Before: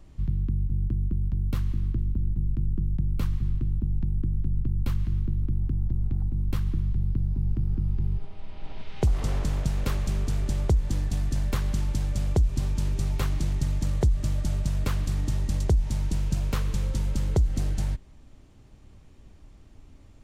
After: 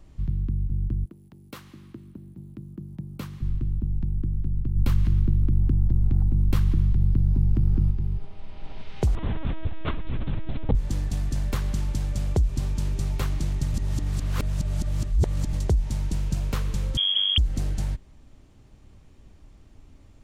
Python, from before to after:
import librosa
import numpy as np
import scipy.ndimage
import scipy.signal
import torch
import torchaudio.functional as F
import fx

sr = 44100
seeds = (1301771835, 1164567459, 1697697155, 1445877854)

y = fx.highpass(x, sr, hz=fx.line((1.04, 440.0), (3.41, 150.0)), slope=12, at=(1.04, 3.41), fade=0.02)
y = fx.env_flatten(y, sr, amount_pct=70, at=(4.75, 7.9), fade=0.02)
y = fx.lpc_vocoder(y, sr, seeds[0], excitation='pitch_kept', order=10, at=(9.15, 10.75))
y = fx.freq_invert(y, sr, carrier_hz=3300, at=(16.97, 17.38))
y = fx.edit(y, sr, fx.reverse_span(start_s=13.74, length_s=1.79), tone=tone)